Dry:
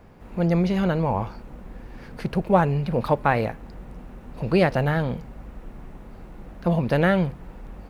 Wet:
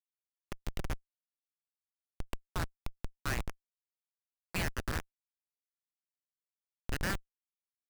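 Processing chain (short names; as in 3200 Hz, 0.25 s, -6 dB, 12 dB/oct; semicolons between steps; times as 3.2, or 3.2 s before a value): Bessel high-pass 2200 Hz, order 8; Schmitt trigger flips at -31 dBFS; gain +11 dB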